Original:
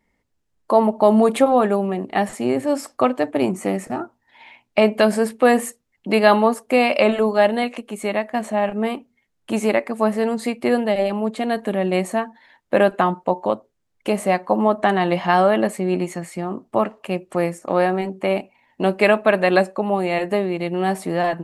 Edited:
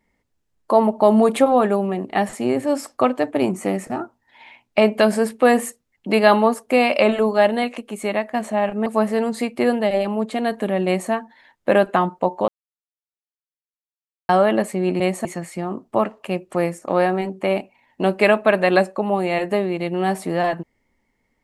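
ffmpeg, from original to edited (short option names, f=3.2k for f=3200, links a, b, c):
-filter_complex "[0:a]asplit=6[a][b][c][d][e][f];[a]atrim=end=8.862[g];[b]atrim=start=9.908:end=13.53,asetpts=PTS-STARTPTS,afade=t=out:st=3.618:d=0.004:c=hsin[h];[c]atrim=start=13.53:end=15.34,asetpts=PTS-STARTPTS,volume=0[i];[d]atrim=start=15.34:end=16.052,asetpts=PTS-STARTPTS,afade=t=in:d=0.004:c=hsin[j];[e]atrim=start=11.908:end=12.162[k];[f]atrim=start=16.048[l];[h][i][j]concat=n=3:v=0:a=1[m];[g][m]acrossfade=d=0.004:c1=hsin:c2=hsin[n];[n][k]acrossfade=d=0.004:c1=hsin:c2=hsin[o];[o][l]acrossfade=d=0.004:c1=hsin:c2=hsin"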